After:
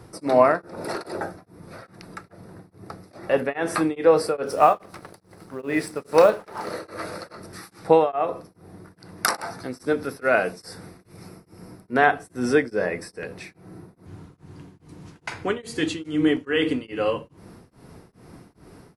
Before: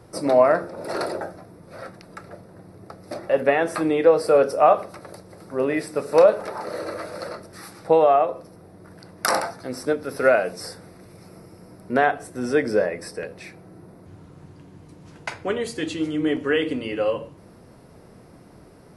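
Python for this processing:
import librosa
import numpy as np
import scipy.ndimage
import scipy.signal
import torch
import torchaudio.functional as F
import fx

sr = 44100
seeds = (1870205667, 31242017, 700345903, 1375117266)

y = fx.law_mismatch(x, sr, coded='A', at=(4.46, 6.71))
y = fx.peak_eq(y, sr, hz=580.0, db=-6.5, octaves=0.49)
y = y * np.abs(np.cos(np.pi * 2.4 * np.arange(len(y)) / sr))
y = y * librosa.db_to_amplitude(4.0)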